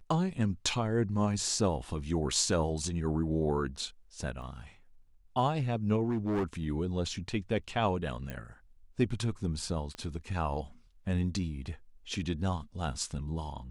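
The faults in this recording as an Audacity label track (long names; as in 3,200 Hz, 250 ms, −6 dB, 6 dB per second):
4.420000	4.420000	drop-out 2.1 ms
6.100000	6.440000	clipping −27 dBFS
8.300000	8.300000	click −24 dBFS
9.950000	9.950000	click −27 dBFS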